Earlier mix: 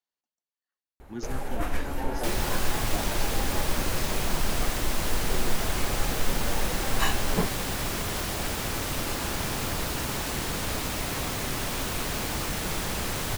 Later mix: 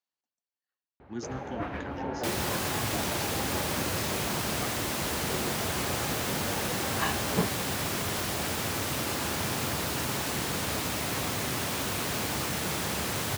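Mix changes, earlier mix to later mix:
first sound: add air absorption 340 m; master: add HPF 79 Hz 24 dB/oct

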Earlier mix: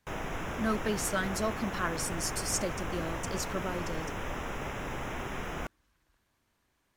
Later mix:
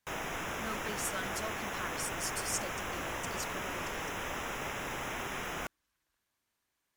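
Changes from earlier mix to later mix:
speech -9.0 dB; master: add tilt +2 dB/oct

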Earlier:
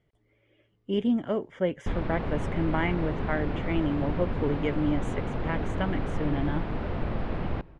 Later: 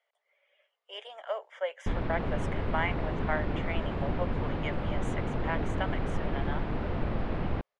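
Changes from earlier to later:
speech: add steep high-pass 560 Hz 48 dB/oct; reverb: off

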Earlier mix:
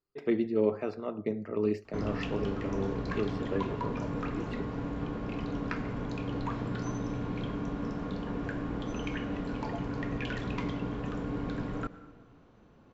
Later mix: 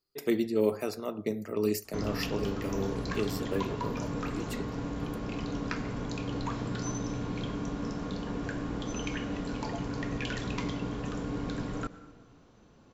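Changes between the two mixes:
speech: remove air absorption 160 m; master: add tone controls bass 0 dB, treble +13 dB

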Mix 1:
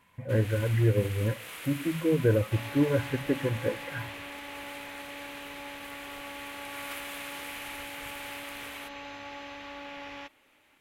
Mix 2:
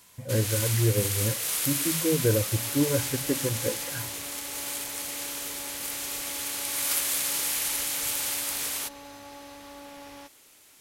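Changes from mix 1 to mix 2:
first sound +6.5 dB; second sound: add high shelf 2000 Hz -11 dB; master: add resonant high shelf 3700 Hz +12.5 dB, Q 1.5

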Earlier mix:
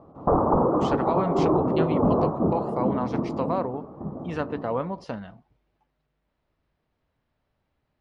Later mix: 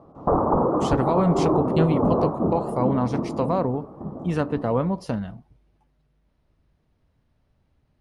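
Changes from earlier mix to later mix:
speech: add low shelf 320 Hz +12 dB; master: remove air absorption 120 m

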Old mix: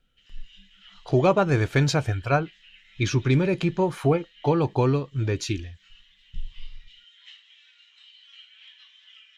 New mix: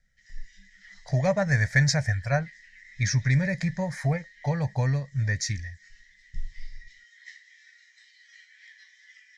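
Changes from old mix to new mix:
speech: add high shelf 5400 Hz -6.5 dB; master: add EQ curve 140 Hz 0 dB, 210 Hz -3 dB, 350 Hz -27 dB, 580 Hz -2 dB, 1300 Hz -14 dB, 1900 Hz +15 dB, 2800 Hz -20 dB, 5300 Hz +10 dB, 7800 Hz +6 dB, 13000 Hz -3 dB

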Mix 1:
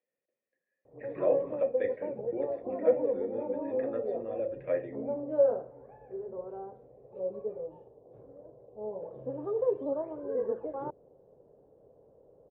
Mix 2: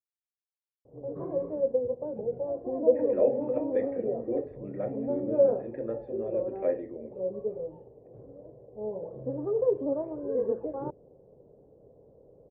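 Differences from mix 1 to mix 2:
speech: entry +1.95 s; master: add tilt shelf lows +7.5 dB, about 740 Hz

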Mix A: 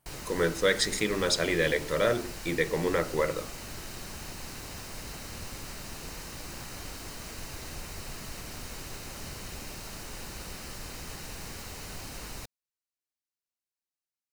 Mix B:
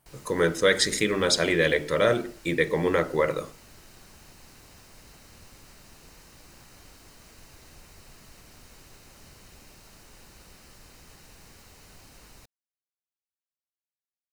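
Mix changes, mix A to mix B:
speech +4.0 dB; background -10.5 dB

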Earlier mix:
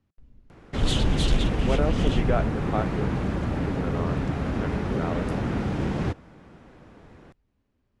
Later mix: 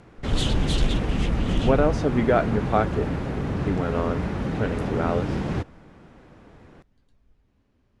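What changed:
speech +6.5 dB; background: entry -0.50 s

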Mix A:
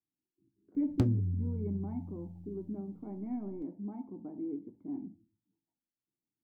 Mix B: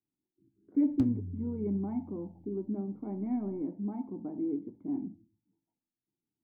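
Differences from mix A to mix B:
speech +5.0 dB; background -7.5 dB

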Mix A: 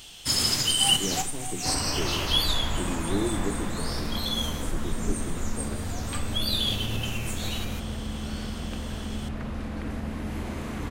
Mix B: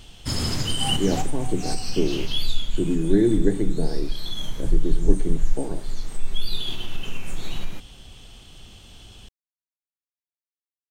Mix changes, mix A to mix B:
speech +10.0 dB; first sound: add tilt -2.5 dB/oct; second sound: muted

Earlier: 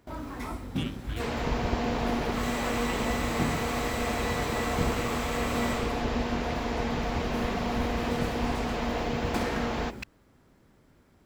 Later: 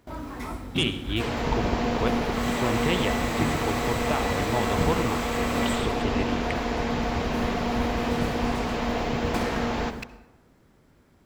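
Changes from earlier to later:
speech +12.0 dB; reverb: on, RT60 0.95 s

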